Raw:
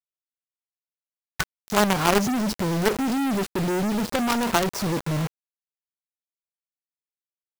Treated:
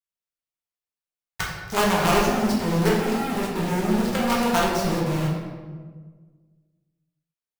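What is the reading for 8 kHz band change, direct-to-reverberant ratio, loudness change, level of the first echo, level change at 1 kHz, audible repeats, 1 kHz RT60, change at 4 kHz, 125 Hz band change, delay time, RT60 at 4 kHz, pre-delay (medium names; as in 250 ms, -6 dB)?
-1.0 dB, -4.5 dB, +1.0 dB, no echo, +1.5 dB, no echo, 1.4 s, +0.5 dB, +2.5 dB, no echo, 0.90 s, 4 ms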